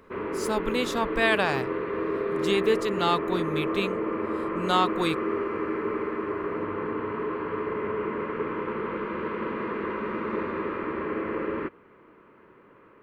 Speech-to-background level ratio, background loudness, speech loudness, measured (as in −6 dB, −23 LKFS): 2.5 dB, −30.0 LKFS, −27.5 LKFS